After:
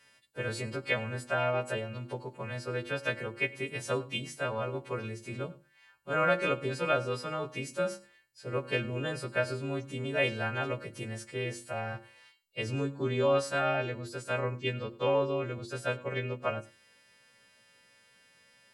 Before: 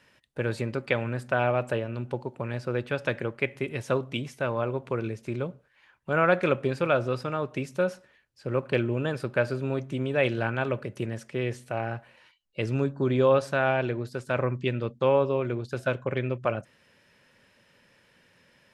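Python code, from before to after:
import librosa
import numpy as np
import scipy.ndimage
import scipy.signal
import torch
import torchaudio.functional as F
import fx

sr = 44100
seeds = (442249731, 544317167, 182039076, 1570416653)

y = fx.freq_snap(x, sr, grid_st=2)
y = fx.hum_notches(y, sr, base_hz=50, count=7)
y = y + 10.0 ** (-21.0 / 20.0) * np.pad(y, (int(101 * sr / 1000.0), 0))[:len(y)]
y = y * 10.0 ** (-5.0 / 20.0)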